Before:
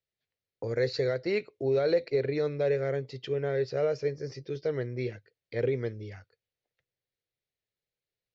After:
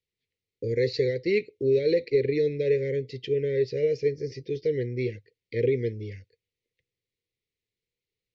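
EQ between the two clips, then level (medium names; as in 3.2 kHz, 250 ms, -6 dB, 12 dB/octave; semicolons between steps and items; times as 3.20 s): elliptic band-stop 480–2000 Hz, stop band 40 dB; distance through air 77 m; peaking EQ 140 Hz -3.5 dB 0.3 oct; +5.5 dB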